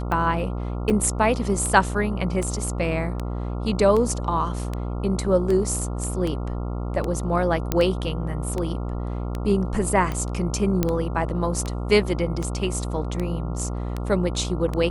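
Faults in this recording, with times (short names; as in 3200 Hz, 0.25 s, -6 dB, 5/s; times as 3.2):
buzz 60 Hz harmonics 23 -28 dBFS
tick 78 rpm -15 dBFS
0.9–0.91 gap 5.3 ms
7.72 pop -7 dBFS
10.83 pop -7 dBFS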